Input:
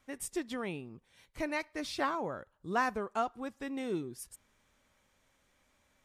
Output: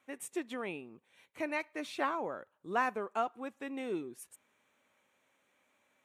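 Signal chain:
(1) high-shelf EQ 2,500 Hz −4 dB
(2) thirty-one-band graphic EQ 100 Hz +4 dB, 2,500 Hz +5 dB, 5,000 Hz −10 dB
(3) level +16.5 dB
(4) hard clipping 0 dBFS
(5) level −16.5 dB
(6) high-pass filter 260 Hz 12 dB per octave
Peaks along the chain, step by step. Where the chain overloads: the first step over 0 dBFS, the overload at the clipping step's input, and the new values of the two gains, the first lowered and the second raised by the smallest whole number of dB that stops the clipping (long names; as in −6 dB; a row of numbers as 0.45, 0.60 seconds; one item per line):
−18.0, −18.0, −1.5, −1.5, −18.0, −19.0 dBFS
no step passes full scale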